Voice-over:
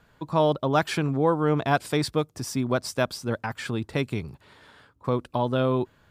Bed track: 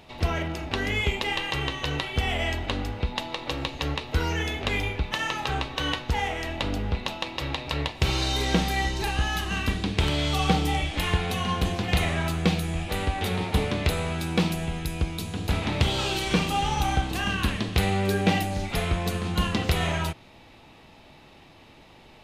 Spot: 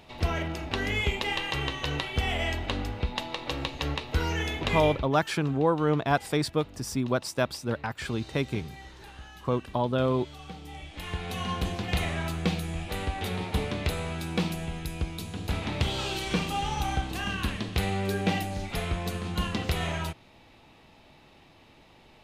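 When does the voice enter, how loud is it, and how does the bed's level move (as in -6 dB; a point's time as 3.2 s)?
4.40 s, -2.0 dB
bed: 4.93 s -2 dB
5.17 s -20.5 dB
10.55 s -20.5 dB
11.42 s -4.5 dB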